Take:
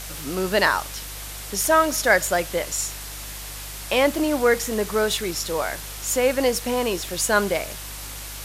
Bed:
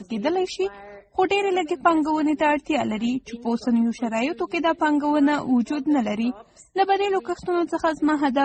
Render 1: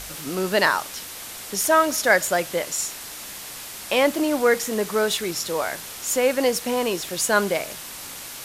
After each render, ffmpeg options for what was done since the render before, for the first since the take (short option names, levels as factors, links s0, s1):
-af "bandreject=f=50:t=h:w=4,bandreject=f=100:t=h:w=4,bandreject=f=150:t=h:w=4"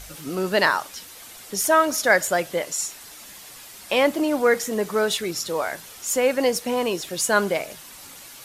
-af "afftdn=nr=8:nf=-37"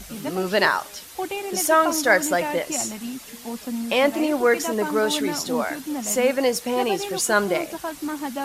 -filter_complex "[1:a]volume=0.376[s0];[0:a][s0]amix=inputs=2:normalize=0"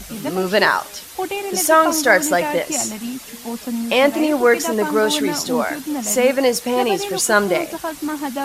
-af "volume=1.68,alimiter=limit=0.891:level=0:latency=1"